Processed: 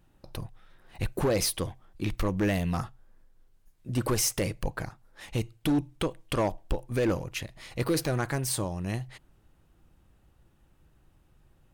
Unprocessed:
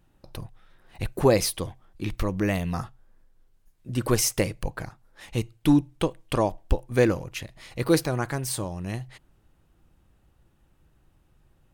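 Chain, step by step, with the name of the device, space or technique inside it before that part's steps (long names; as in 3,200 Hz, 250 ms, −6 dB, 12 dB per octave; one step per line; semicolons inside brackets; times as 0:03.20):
limiter into clipper (brickwall limiter −15 dBFS, peak gain reduction 7.5 dB; hard clipping −20.5 dBFS, distortion −15 dB)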